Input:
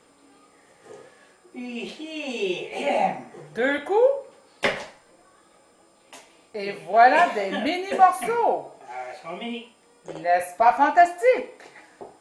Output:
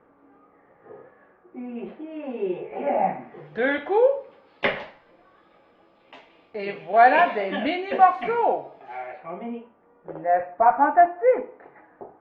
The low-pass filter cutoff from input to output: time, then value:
low-pass filter 24 dB per octave
0:02.97 1,700 Hz
0:03.47 3,400 Hz
0:08.96 3,400 Hz
0:09.40 1,600 Hz

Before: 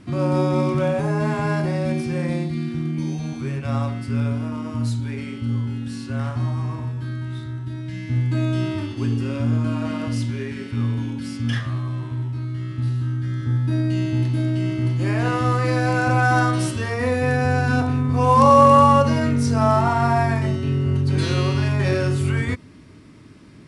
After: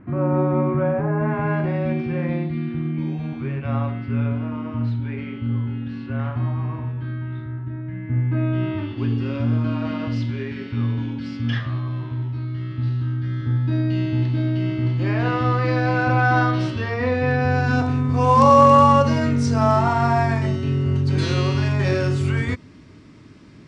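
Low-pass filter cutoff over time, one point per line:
low-pass filter 24 dB per octave
0:01.15 1,900 Hz
0:01.70 3,000 Hz
0:07.10 3,000 Hz
0:08.00 1,800 Hz
0:09.29 4,500 Hz
0:17.39 4,500 Hz
0:17.90 7,600 Hz

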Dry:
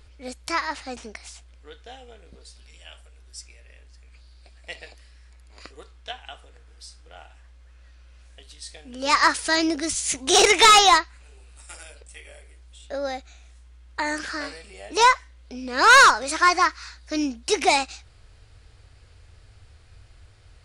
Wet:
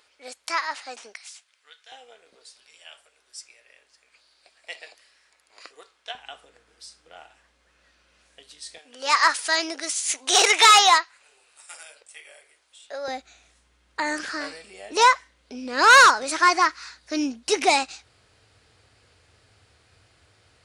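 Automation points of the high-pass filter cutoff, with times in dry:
610 Hz
from 0:01.14 1,400 Hz
from 0:01.92 530 Hz
from 0:06.15 200 Hz
from 0:08.78 620 Hz
from 0:13.08 160 Hz

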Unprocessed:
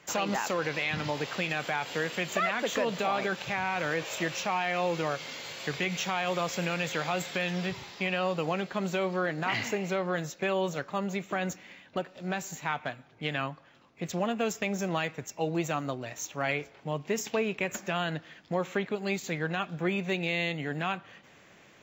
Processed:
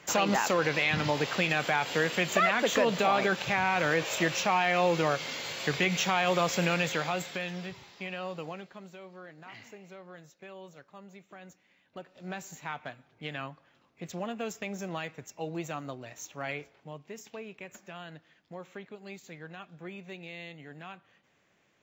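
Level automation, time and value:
0:06.74 +3.5 dB
0:07.72 −8 dB
0:08.42 −8 dB
0:08.92 −18 dB
0:11.69 −18 dB
0:12.24 −6 dB
0:16.61 −6 dB
0:17.10 −13.5 dB

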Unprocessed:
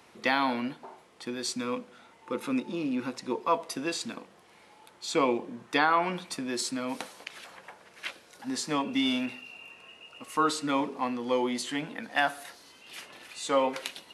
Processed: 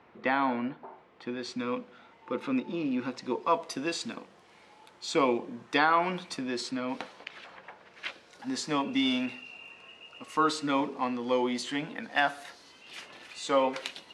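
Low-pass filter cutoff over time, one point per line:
0:00.79 2,000 Hz
0:01.78 3,900 Hz
0:02.68 3,900 Hz
0:03.60 7,400 Hz
0:06.22 7,400 Hz
0:06.82 3,700 Hz
0:07.65 3,700 Hz
0:08.49 6,900 Hz

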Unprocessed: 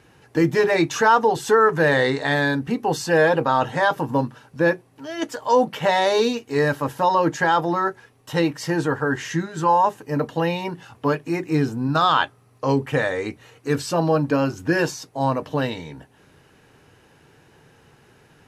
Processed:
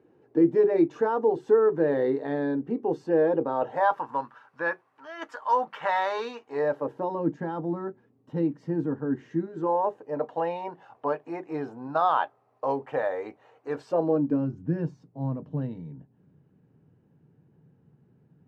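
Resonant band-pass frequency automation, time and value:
resonant band-pass, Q 2
0:03.46 360 Hz
0:04.04 1,200 Hz
0:06.30 1,200 Hz
0:07.22 240 Hz
0:09.14 240 Hz
0:10.31 720 Hz
0:13.79 720 Hz
0:14.49 170 Hz

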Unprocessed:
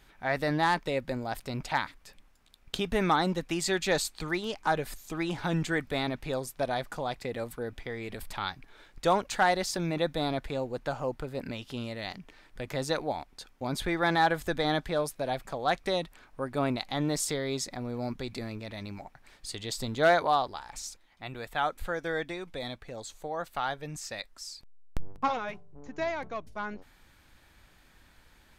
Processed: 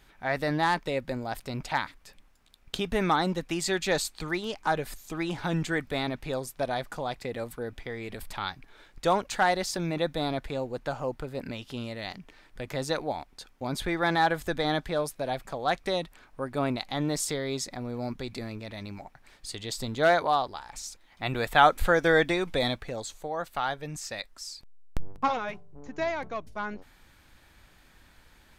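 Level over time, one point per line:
0:20.88 +0.5 dB
0:21.31 +10.5 dB
0:22.62 +10.5 dB
0:23.23 +2 dB

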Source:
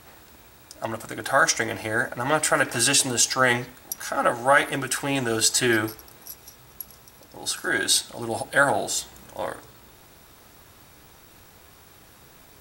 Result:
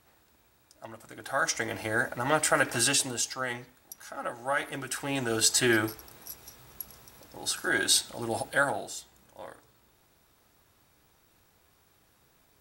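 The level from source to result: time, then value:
0:00.96 −14.5 dB
0:01.83 −3.5 dB
0:02.78 −3.5 dB
0:03.45 −13.5 dB
0:04.29 −13.5 dB
0:05.49 −3 dB
0:08.42 −3 dB
0:09.00 −14 dB

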